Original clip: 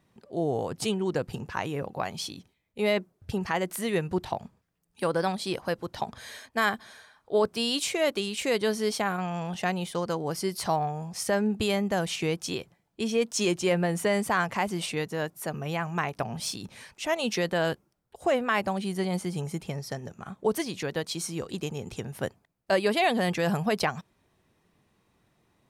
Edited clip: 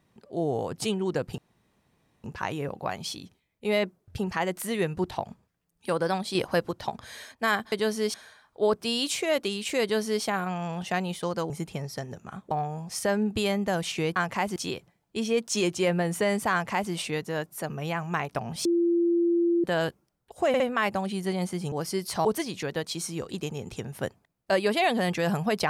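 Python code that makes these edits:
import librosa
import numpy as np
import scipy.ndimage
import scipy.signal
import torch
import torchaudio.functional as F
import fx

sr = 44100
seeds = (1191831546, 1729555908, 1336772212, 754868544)

y = fx.edit(x, sr, fx.insert_room_tone(at_s=1.38, length_s=0.86),
    fx.clip_gain(start_s=5.49, length_s=0.36, db=4.5),
    fx.duplicate(start_s=8.54, length_s=0.42, to_s=6.86),
    fx.swap(start_s=10.22, length_s=0.53, other_s=19.44, other_length_s=1.01),
    fx.duplicate(start_s=14.36, length_s=0.4, to_s=12.4),
    fx.bleep(start_s=16.49, length_s=0.99, hz=342.0, db=-20.0),
    fx.stutter(start_s=18.32, slice_s=0.06, count=3), tone=tone)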